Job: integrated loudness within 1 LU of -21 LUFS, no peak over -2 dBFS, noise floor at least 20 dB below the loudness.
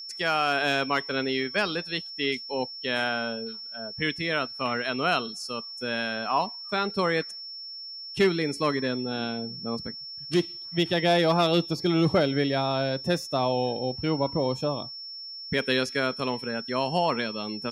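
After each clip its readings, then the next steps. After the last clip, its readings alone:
steady tone 5.4 kHz; tone level -37 dBFS; loudness -27.0 LUFS; peak level -12.5 dBFS; loudness target -21.0 LUFS
-> band-stop 5.4 kHz, Q 30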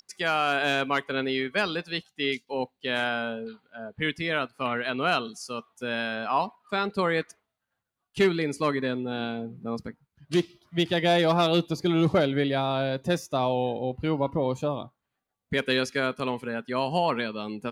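steady tone not found; loudness -27.5 LUFS; peak level -12.5 dBFS; loudness target -21.0 LUFS
-> trim +6.5 dB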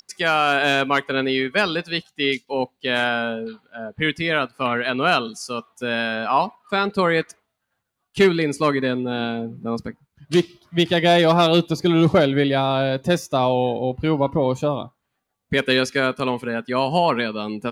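loudness -21.0 LUFS; peak level -6.0 dBFS; noise floor -77 dBFS

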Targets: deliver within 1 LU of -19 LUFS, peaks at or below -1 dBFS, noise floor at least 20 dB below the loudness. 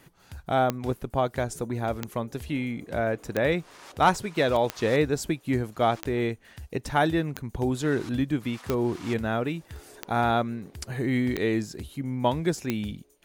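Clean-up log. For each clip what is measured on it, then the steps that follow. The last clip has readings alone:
clicks found 10; loudness -27.5 LUFS; peak level -10.0 dBFS; loudness target -19.0 LUFS
-> de-click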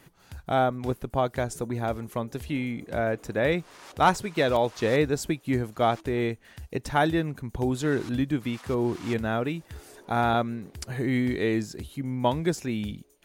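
clicks found 0; loudness -27.5 LUFS; peak level -10.0 dBFS; loudness target -19.0 LUFS
-> trim +8.5 dB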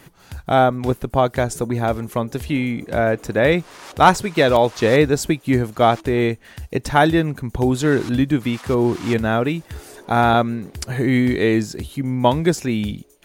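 loudness -19.0 LUFS; peak level -1.5 dBFS; noise floor -50 dBFS

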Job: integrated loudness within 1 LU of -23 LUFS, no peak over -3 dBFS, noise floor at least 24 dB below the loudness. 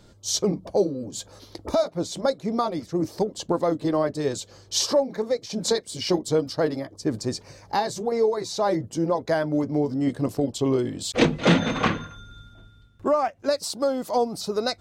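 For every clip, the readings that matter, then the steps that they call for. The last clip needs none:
loudness -25.0 LUFS; peak level -6.0 dBFS; loudness target -23.0 LUFS
-> trim +2 dB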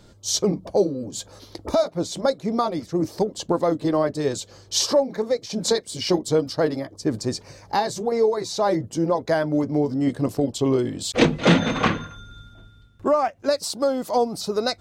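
loudness -23.0 LUFS; peak level -4.0 dBFS; noise floor -51 dBFS

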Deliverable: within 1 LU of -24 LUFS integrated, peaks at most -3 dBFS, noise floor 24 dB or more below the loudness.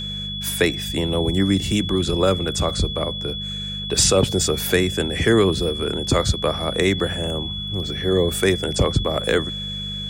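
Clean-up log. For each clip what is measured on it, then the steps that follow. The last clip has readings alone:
hum 50 Hz; highest harmonic 200 Hz; hum level -30 dBFS; steady tone 3.4 kHz; tone level -28 dBFS; loudness -21.0 LUFS; peak level -4.0 dBFS; loudness target -24.0 LUFS
-> de-hum 50 Hz, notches 4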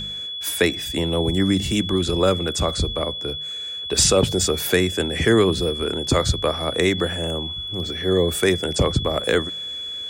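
hum not found; steady tone 3.4 kHz; tone level -28 dBFS
-> band-stop 3.4 kHz, Q 30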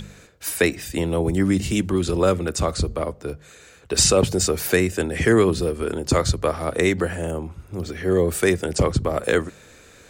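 steady tone not found; loudness -21.5 LUFS; peak level -5.0 dBFS; loudness target -24.0 LUFS
-> trim -2.5 dB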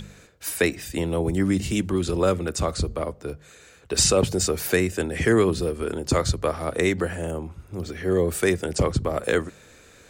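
loudness -24.0 LUFS; peak level -7.5 dBFS; noise floor -51 dBFS

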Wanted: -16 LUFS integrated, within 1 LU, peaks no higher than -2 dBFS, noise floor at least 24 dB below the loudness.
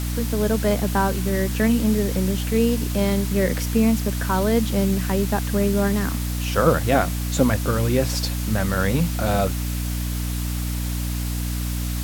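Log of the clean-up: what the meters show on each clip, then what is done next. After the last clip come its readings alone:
hum 60 Hz; highest harmonic 300 Hz; hum level -23 dBFS; noise floor -26 dBFS; noise floor target -46 dBFS; loudness -22.0 LUFS; peak level -3.0 dBFS; loudness target -16.0 LUFS
-> hum notches 60/120/180/240/300 Hz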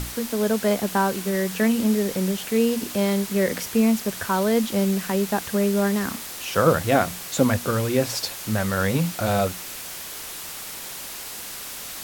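hum not found; noise floor -36 dBFS; noise floor target -48 dBFS
-> noise reduction 12 dB, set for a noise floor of -36 dBFS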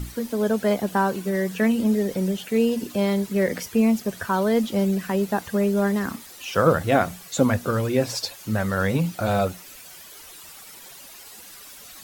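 noise floor -44 dBFS; noise floor target -47 dBFS
-> noise reduction 6 dB, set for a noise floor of -44 dBFS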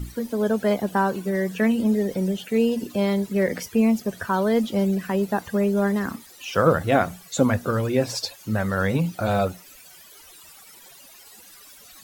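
noise floor -48 dBFS; loudness -23.5 LUFS; peak level -5.0 dBFS; loudness target -16.0 LUFS
-> trim +7.5 dB; peak limiter -2 dBFS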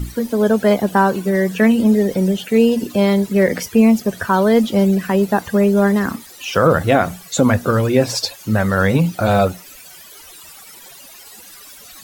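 loudness -16.0 LUFS; peak level -2.0 dBFS; noise floor -40 dBFS

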